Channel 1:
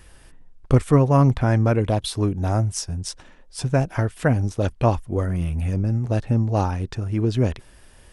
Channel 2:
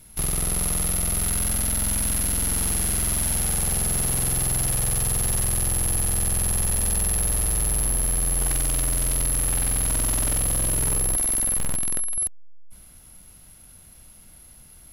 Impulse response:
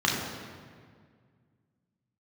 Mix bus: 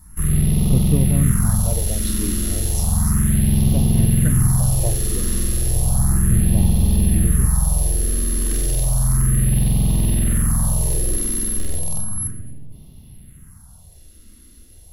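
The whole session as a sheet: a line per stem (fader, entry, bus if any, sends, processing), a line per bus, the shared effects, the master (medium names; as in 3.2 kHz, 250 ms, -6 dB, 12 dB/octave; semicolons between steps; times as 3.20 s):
-9.0 dB, 0.00 s, no send, none
-4.0 dB, 0.00 s, send -8 dB, peaking EQ 2.3 kHz -6 dB 0.46 oct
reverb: on, RT60 1.9 s, pre-delay 3 ms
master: bass shelf 160 Hz +9.5 dB; phase shifter stages 4, 0.33 Hz, lowest notch 130–1500 Hz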